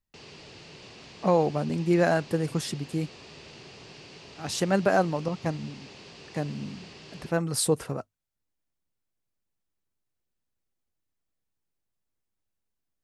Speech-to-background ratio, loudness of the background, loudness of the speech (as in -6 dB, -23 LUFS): 19.0 dB, -46.5 LUFS, -27.5 LUFS